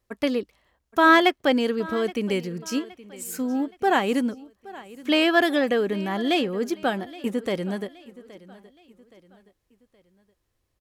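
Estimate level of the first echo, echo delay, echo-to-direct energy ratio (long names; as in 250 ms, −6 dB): −19.5 dB, 821 ms, −18.5 dB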